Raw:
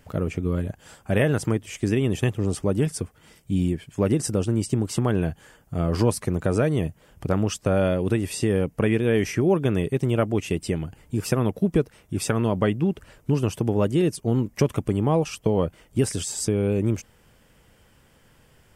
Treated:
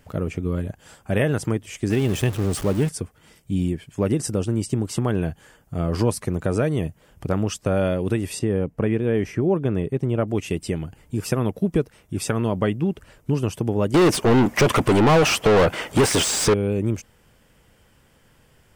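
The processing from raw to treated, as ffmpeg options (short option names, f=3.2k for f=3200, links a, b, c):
-filter_complex "[0:a]asettb=1/sr,asplit=3[a][b][c];[a]atrim=end=1.904[d];[b]atrim=start=1.9:end=2.89,asetpts=PTS-STARTPTS,afade=t=in:d=0.004:c=qsin,afade=t=out:st=0.986:d=0.004:c=qsin,aeval=exprs='val(0)+0.5*0.0376*sgn(val(0))':c=same[e];[c]atrim=start=2.886[f];[d][e]acrossfade=d=0.004:c1=hsin:c2=qsin[g];[g][f]acrossfade=d=0.004:c1=qsin:c2=hsin,asettb=1/sr,asplit=3[h][i][j];[h]atrim=end=8.394[k];[i]atrim=start=8.39:end=10.28,asetpts=PTS-STARTPTS,afade=t=in:d=0.004:c=qsin,afade=t=out:st=1.886:d=0.004:c=qsin,highshelf=f=2.2k:g=-11.5[l];[j]atrim=start=10.276[m];[k][l]acrossfade=d=0.004:c1=hsin:c2=qsin[n];[n][m]acrossfade=d=0.004:c1=qsin:c2=hsin,asettb=1/sr,asplit=3[o][p][q];[o]atrim=end=13.944[r];[p]atrim=start=13.94:end=16.54,asetpts=PTS-STARTPTS,afade=t=in:d=0.004:c=qsin,afade=t=out:st=2.596:d=0.004:c=qsin,asplit=2[s][t];[t]highpass=f=720:p=1,volume=35dB,asoftclip=type=tanh:threshold=-8.5dB[u];[s][u]amix=inputs=2:normalize=0,lowpass=f=2.7k:p=1,volume=-6dB[v];[q]atrim=start=16.536[w];[r][v]acrossfade=d=0.004:c1=hsin:c2=qsin[x];[x][w]acrossfade=d=0.004:c1=qsin:c2=hsin"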